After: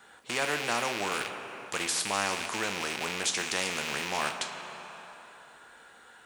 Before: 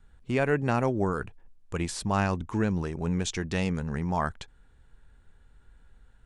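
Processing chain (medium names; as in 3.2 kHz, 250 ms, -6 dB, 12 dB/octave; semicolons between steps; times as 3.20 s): rattle on loud lows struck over -39 dBFS, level -29 dBFS; high-pass 540 Hz 12 dB/octave; two-slope reverb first 0.24 s, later 2.5 s, from -18 dB, DRR 6 dB; spectrum-flattening compressor 2:1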